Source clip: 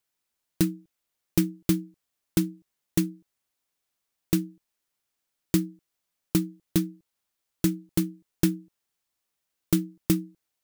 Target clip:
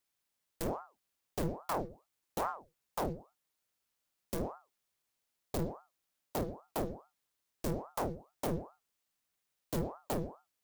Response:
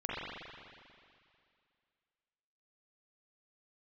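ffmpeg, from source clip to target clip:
-filter_complex "[0:a]aeval=exprs='(tanh(63.1*val(0)+0.75)-tanh(0.75))/63.1':channel_layout=same,asplit=2[link_01][link_02];[1:a]atrim=start_sample=2205,afade=type=out:start_time=0.28:duration=0.01,atrim=end_sample=12789,asetrate=79380,aresample=44100[link_03];[link_02][link_03]afir=irnorm=-1:irlink=0,volume=-13.5dB[link_04];[link_01][link_04]amix=inputs=2:normalize=0,aeval=exprs='val(0)*sin(2*PI*620*n/s+620*0.75/2.4*sin(2*PI*2.4*n/s))':channel_layout=same,volume=4.5dB"

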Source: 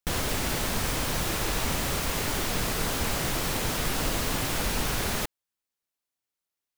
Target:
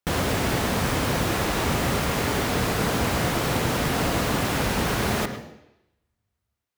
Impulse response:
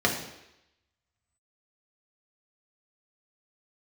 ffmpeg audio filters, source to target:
-filter_complex "[0:a]highpass=65,highshelf=frequency=3000:gain=-8.5,asplit=2[link_01][link_02];[1:a]atrim=start_sample=2205,adelay=103[link_03];[link_02][link_03]afir=irnorm=-1:irlink=0,volume=-22dB[link_04];[link_01][link_04]amix=inputs=2:normalize=0,volume=6.5dB"

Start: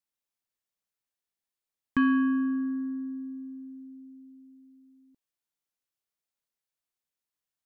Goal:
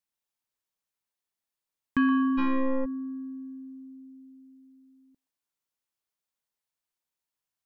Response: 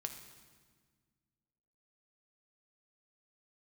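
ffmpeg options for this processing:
-filter_complex "[0:a]asplit=2[link_01][link_02];[link_02]highpass=frequency=910:width_type=q:width=4[link_03];[1:a]atrim=start_sample=2205,adelay=122[link_04];[link_03][link_04]afir=irnorm=-1:irlink=0,volume=-9.5dB[link_05];[link_01][link_05]amix=inputs=2:normalize=0,asplit=3[link_06][link_07][link_08];[link_06]afade=type=out:start_time=2.37:duration=0.02[link_09];[link_07]aeval=exprs='0.0841*(cos(1*acos(clip(val(0)/0.0841,-1,1)))-cos(1*PI/2))+0.0335*(cos(6*acos(clip(val(0)/0.0841,-1,1)))-cos(6*PI/2))':channel_layout=same,afade=type=in:start_time=2.37:duration=0.02,afade=type=out:start_time=2.84:duration=0.02[link_10];[link_08]afade=type=in:start_time=2.84:duration=0.02[link_11];[link_09][link_10][link_11]amix=inputs=3:normalize=0"

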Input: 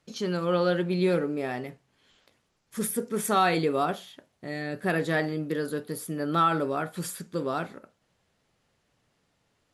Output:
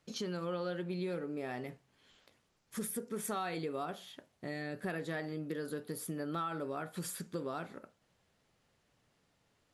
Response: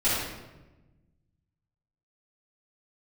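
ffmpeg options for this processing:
-af "acompressor=threshold=-34dB:ratio=4,volume=-2.5dB"

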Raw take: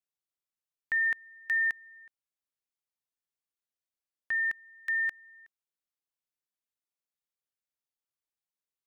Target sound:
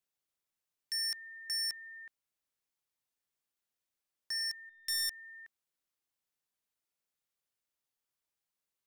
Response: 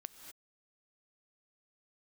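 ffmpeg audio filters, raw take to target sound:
-filter_complex "[0:a]asettb=1/sr,asplit=3[link_01][link_02][link_03];[link_01]atrim=end=4.694[link_04];[link_02]atrim=start=4.69:end=5.1,asetpts=PTS-STARTPTS,afade=type=in:duration=0.004:curve=qsin,afade=type=out:start_time=0.406:duration=0.004:curve=qsin,aeval=exprs='0.0562*(cos(1*acos(clip(val(0)/0.0562,-1,1)))-cos(1*PI/2))+0.02*(cos(3*acos(clip(val(0)/0.0562,-1,1)))-cos(3*PI/2))+0.00398*(cos(4*acos(clip(val(0)/0.0562,-1,1)))-cos(4*PI/2))+0.0141*(cos(5*acos(clip(val(0)/0.0562,-1,1)))-cos(5*PI/2))+0.00708*(cos(7*acos(clip(val(0)/0.0562,-1,1)))-cos(7*PI/2))':channel_layout=same[link_05];[link_03]atrim=start=5.096[link_06];[link_04][link_05]acrossfade=duration=0.004:curve1=hsin:curve2=qsin[link_07];[link_07][link_06]acrossfade=duration=0.004:curve1=qsin:curve2=hsin,aeval=exprs='0.0251*(abs(mod(val(0)/0.0251+3,4)-2)-1)':channel_layout=same,volume=3.5dB"

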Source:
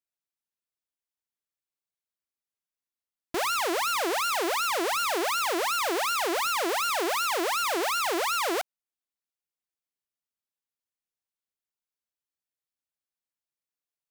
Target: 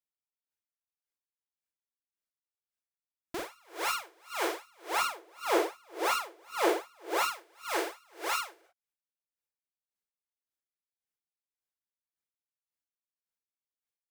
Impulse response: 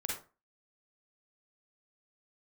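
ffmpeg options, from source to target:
-filter_complex "[0:a]asettb=1/sr,asplit=3[link_01][link_02][link_03];[link_01]atrim=end=4.894[link_04];[link_02]atrim=start=4.89:end=7.23,asetpts=PTS-STARTPTS,afade=type=in:duration=0.004:curve=qsin,afade=type=out:start_time=2.336:duration=0.004:curve=qsin,equalizer=frequency=430:width_type=o:width=2.5:gain=7[link_05];[link_03]atrim=start=7.226[link_06];[link_04][link_05]acrossfade=duration=0.004:curve1=hsin:curve2=qsin[link_07];[link_07][link_06]acrossfade=duration=0.004:curve1=qsin:curve2=hsin[link_08];[1:a]atrim=start_sample=2205,afade=type=out:start_time=0.16:duration=0.01,atrim=end_sample=7497[link_09];[link_08][link_09]afir=irnorm=-1:irlink=0,aeval=exprs='val(0)*pow(10,-35*(0.5-0.5*cos(2*PI*1.8*n/s))/20)':channel_layout=same,volume=-3.5dB"

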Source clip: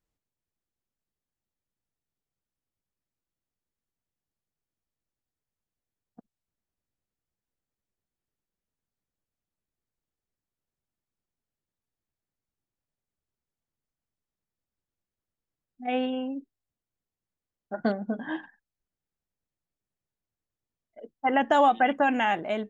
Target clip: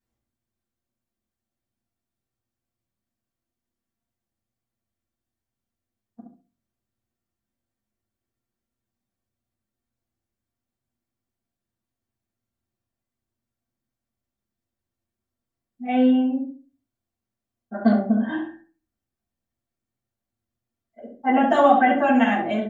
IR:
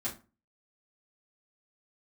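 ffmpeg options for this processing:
-filter_complex "[0:a]asplit=2[link_01][link_02];[link_02]adelay=67,lowpass=frequency=1200:poles=1,volume=-3.5dB,asplit=2[link_03][link_04];[link_04]adelay=67,lowpass=frequency=1200:poles=1,volume=0.32,asplit=2[link_05][link_06];[link_06]adelay=67,lowpass=frequency=1200:poles=1,volume=0.32,asplit=2[link_07][link_08];[link_08]adelay=67,lowpass=frequency=1200:poles=1,volume=0.32[link_09];[link_01][link_03][link_05][link_07][link_09]amix=inputs=5:normalize=0[link_10];[1:a]atrim=start_sample=2205[link_11];[link_10][link_11]afir=irnorm=-1:irlink=0"

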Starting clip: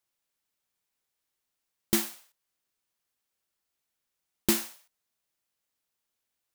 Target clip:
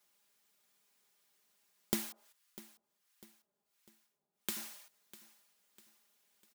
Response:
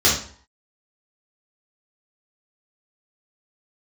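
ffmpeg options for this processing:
-filter_complex "[0:a]highpass=130,aecho=1:1:4.9:0.97,acompressor=threshold=-38dB:ratio=12,asettb=1/sr,asplit=3[link_01][link_02][link_03];[link_01]atrim=end=2.124[link_04];[link_02]atrim=start=2.12:end=4.57,asetpts=PTS-STARTPTS,afade=type=in:duration=0.004:curve=qsin,afade=type=out:start_time=2.446:duration=0.004:curve=qsin,acrossover=split=900[link_05][link_06];[link_05]aeval=exprs='val(0)*(1-1/2+1/2*cos(2*PI*1.4*n/s))':channel_layout=same[link_07];[link_06]aeval=exprs='val(0)*(1-1/2-1/2*cos(2*PI*1.4*n/s))':channel_layout=same[link_08];[link_07][link_08]amix=inputs=2:normalize=0[link_09];[link_03]atrim=start=4.566[link_10];[link_04][link_09]acrossfade=duration=0.004:curve1=hsin:curve2=qsin[link_11];[link_11][link_10]acrossfade=duration=0.004:curve1=qsin:curve2=hsin,aecho=1:1:649|1298|1947|2596:0.126|0.0554|0.0244|0.0107,volume=6dB"

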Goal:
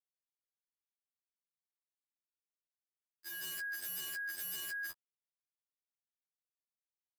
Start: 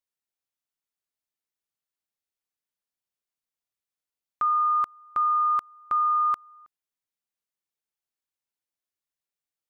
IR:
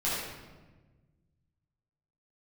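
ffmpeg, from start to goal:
-af "aecho=1:1:213|283|346:0.398|0.668|0.282,acrusher=bits=3:mix=0:aa=0.5,agate=range=-29dB:threshold=-17dB:ratio=16:detection=peak,areverse,acompressor=mode=upward:threshold=-53dB:ratio=2.5,areverse,equalizer=frequency=880:width_type=o:width=0.56:gain=5,bandreject=frequency=690:width=12,asetrate=59535,aresample=44100,adynamicequalizer=threshold=0.00178:dfrequency=1200:dqfactor=0.87:tfrequency=1200:tqfactor=0.87:attack=5:release=100:ratio=0.375:range=2:mode=boostabove:tftype=bell,aeval=exprs='(mod(211*val(0)+1,2)-1)/211':channel_layout=same,afftfilt=real='re*2*eq(mod(b,4),0)':imag='im*2*eq(mod(b,4),0)':win_size=2048:overlap=0.75,volume=11.5dB"

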